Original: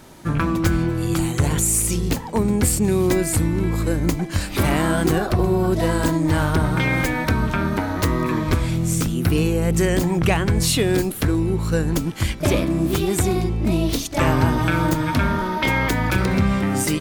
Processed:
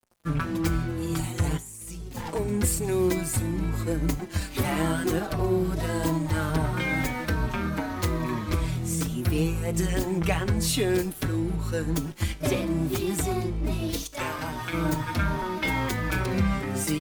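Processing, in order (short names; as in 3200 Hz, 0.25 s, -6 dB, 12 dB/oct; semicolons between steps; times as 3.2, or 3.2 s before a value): 14.04–14.73 low shelf 450 Hz -10.5 dB; crossover distortion -37.5 dBFS; high shelf 8700 Hz +2.5 dB; 1.57–2.34 negative-ratio compressor -32 dBFS, ratio -1; resonator 53 Hz, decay 0.55 s, harmonics all, mix 40%; endless flanger 4.9 ms -2.4 Hz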